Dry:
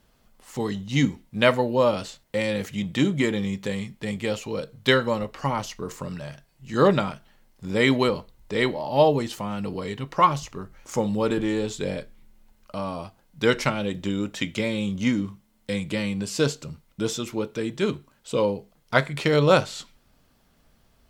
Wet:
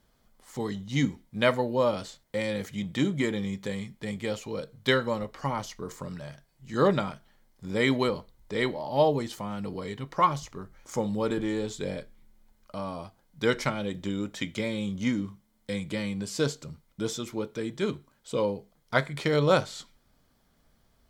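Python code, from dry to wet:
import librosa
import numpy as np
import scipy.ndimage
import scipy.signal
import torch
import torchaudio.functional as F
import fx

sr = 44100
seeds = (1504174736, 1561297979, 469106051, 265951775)

y = fx.notch(x, sr, hz=2700.0, q=7.9)
y = F.gain(torch.from_numpy(y), -4.5).numpy()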